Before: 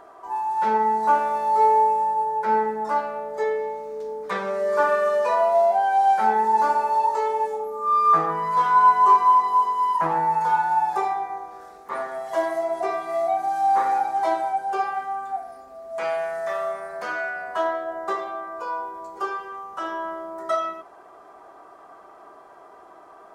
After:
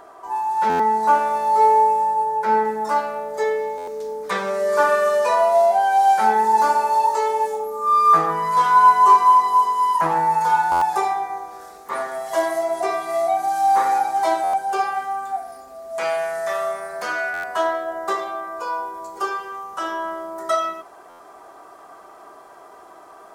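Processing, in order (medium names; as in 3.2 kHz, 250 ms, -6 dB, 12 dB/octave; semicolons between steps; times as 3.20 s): treble shelf 4.2 kHz +6.5 dB, from 2.65 s +11.5 dB; buffer glitch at 0.69/3.77/10.71/14.43/17.33/21.09 s, samples 512, times 8; trim +2.5 dB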